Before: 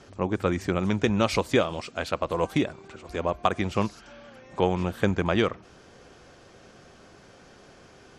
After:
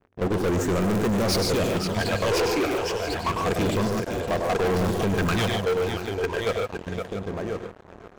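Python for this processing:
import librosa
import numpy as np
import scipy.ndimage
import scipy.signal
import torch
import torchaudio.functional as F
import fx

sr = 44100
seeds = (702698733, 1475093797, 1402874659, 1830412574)

p1 = fx.env_lowpass(x, sr, base_hz=620.0, full_db=-24.5)
p2 = fx.transient(p1, sr, attack_db=-7, sustain_db=-2)
p3 = fx.echo_feedback(p2, sr, ms=1044, feedback_pct=21, wet_db=-4.5)
p4 = fx.phaser_stages(p3, sr, stages=12, low_hz=180.0, high_hz=4600.0, hz=0.29, feedback_pct=35)
p5 = (np.mod(10.0 ** (19.0 / 20.0) * p4 + 1.0, 2.0) - 1.0) / 10.0 ** (19.0 / 20.0)
p6 = p4 + F.gain(torch.from_numpy(p5), -11.0).numpy()
p7 = fx.level_steps(p6, sr, step_db=15)
p8 = fx.high_shelf(p7, sr, hz=4800.0, db=7.5)
p9 = fx.small_body(p8, sr, hz=(450.0, 680.0, 1600.0), ring_ms=30, db=7)
p10 = p9 + fx.echo_multitap(p9, sr, ms=(101, 143, 151, 514, 682), db=(-9.5, -11.0, -16.5, -14.0, -19.0), dry=0)
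p11 = fx.leveller(p10, sr, passes=5)
y = F.gain(torch.from_numpy(p11), -5.5).numpy()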